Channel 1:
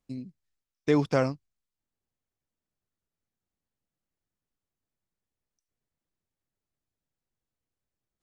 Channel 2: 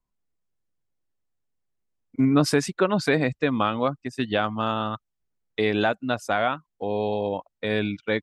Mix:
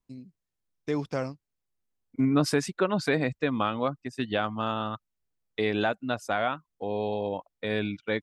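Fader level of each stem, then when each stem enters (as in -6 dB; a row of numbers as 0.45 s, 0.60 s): -6.0 dB, -4.0 dB; 0.00 s, 0.00 s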